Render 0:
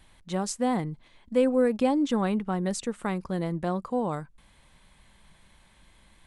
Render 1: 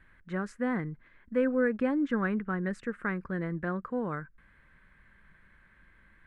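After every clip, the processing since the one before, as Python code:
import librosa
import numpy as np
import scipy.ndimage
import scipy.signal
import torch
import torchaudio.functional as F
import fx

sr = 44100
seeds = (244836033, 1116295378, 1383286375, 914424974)

y = fx.curve_eq(x, sr, hz=(460.0, 810.0, 1600.0, 3400.0, 6100.0), db=(0, -9, 12, -13, -19))
y = y * librosa.db_to_amplitude(-3.5)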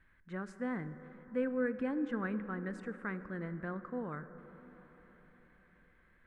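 y = fx.rev_plate(x, sr, seeds[0], rt60_s=4.9, hf_ratio=0.3, predelay_ms=0, drr_db=11.0)
y = y * librosa.db_to_amplitude(-7.5)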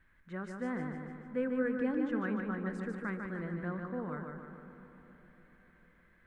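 y = fx.echo_feedback(x, sr, ms=149, feedback_pct=54, wet_db=-5)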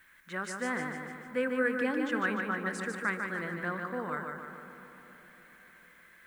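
y = fx.tilt_eq(x, sr, slope=4.0)
y = y * librosa.db_to_amplitude(7.5)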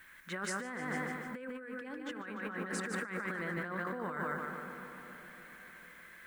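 y = fx.over_compress(x, sr, threshold_db=-39.0, ratio=-1.0)
y = y * librosa.db_to_amplitude(-1.0)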